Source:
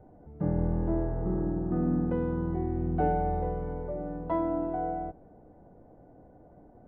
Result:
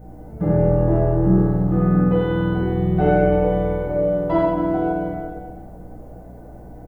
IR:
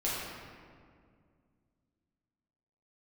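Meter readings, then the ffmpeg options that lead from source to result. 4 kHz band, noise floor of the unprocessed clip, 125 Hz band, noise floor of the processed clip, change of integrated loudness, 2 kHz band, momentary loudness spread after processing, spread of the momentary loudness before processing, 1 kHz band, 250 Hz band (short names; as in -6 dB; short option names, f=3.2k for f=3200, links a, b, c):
n/a, -55 dBFS, +12.5 dB, -39 dBFS, +11.5 dB, +16.0 dB, 9 LU, 8 LU, +7.5 dB, +11.0 dB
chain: -filter_complex "[0:a]equalizer=f=190:w=6.3:g=6[a];[1:a]atrim=start_sample=2205,afade=t=out:st=0.16:d=0.01,atrim=end_sample=7497[b];[a][b]afir=irnorm=-1:irlink=0,crystalizer=i=6:c=0,aecho=1:1:80|172|277.8|399.5|539.4:0.631|0.398|0.251|0.158|0.1,aeval=exprs='val(0)+0.00631*(sin(2*PI*60*n/s)+sin(2*PI*2*60*n/s)/2+sin(2*PI*3*60*n/s)/3+sin(2*PI*4*60*n/s)/4+sin(2*PI*5*60*n/s)/5)':c=same,volume=3.5dB"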